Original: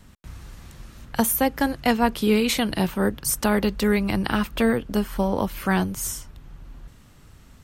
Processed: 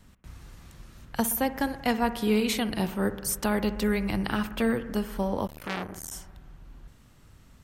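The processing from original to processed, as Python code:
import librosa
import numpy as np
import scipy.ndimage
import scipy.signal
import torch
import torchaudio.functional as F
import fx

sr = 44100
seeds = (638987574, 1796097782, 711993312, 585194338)

p1 = x + fx.echo_bbd(x, sr, ms=61, stages=1024, feedback_pct=75, wet_db=-15, dry=0)
p2 = fx.transformer_sat(p1, sr, knee_hz=2300.0, at=(5.47, 6.14))
y = F.gain(torch.from_numpy(p2), -5.5).numpy()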